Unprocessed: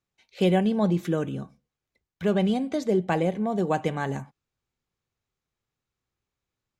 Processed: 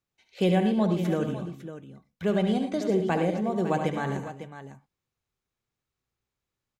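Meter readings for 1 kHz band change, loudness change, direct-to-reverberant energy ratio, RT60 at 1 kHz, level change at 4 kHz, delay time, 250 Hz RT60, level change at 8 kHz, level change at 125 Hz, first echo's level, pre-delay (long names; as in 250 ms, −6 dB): −1.0 dB, −1.0 dB, no reverb audible, no reverb audible, −1.0 dB, 72 ms, no reverb audible, −1.0 dB, −1.0 dB, −8.5 dB, no reverb audible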